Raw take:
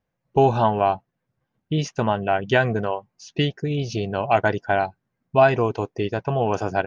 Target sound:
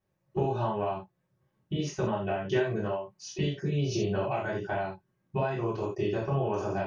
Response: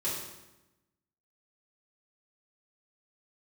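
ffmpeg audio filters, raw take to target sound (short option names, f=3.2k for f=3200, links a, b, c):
-filter_complex "[0:a]acompressor=threshold=-27dB:ratio=10[a];[1:a]atrim=start_sample=2205,atrim=end_sample=4410[b];[a][b]afir=irnorm=-1:irlink=0,volume=-4dB"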